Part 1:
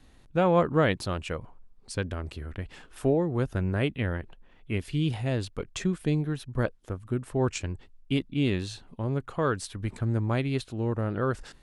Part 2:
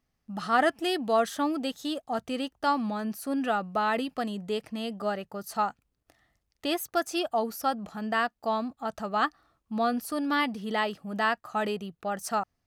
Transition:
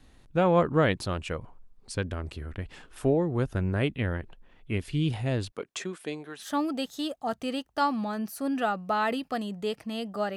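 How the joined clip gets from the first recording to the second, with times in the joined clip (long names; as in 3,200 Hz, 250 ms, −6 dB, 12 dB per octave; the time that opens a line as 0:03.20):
part 1
0:05.50–0:06.49: high-pass filter 260 Hz → 670 Hz
0:06.44: continue with part 2 from 0:01.30, crossfade 0.10 s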